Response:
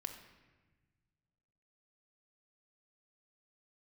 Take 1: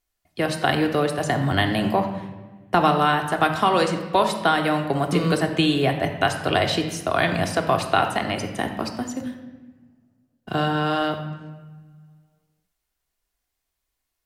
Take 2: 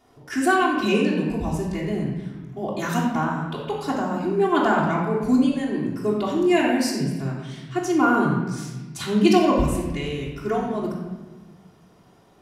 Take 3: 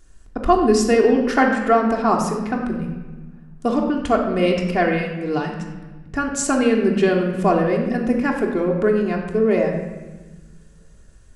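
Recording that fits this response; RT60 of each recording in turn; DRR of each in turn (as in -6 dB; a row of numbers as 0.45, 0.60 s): 1; 1.3, 1.2, 1.3 s; 4.0, -7.0, -0.5 dB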